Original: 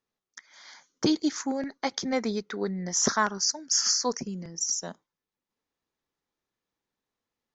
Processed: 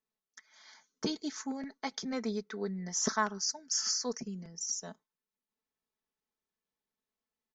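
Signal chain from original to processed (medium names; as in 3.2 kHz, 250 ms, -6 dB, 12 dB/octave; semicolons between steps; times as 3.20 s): comb 4.6 ms, depth 55%; trim -8.5 dB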